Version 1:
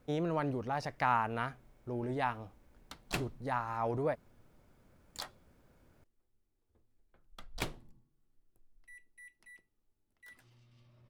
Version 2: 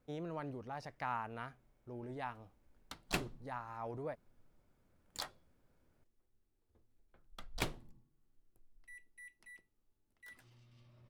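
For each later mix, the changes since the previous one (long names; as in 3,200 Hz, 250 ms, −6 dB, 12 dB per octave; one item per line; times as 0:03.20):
speech −9.5 dB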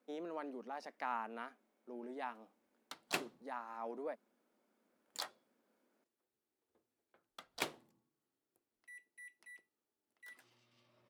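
speech: add elliptic high-pass filter 210 Hz, stop band 40 dB
background: add high-pass filter 320 Hz 12 dB per octave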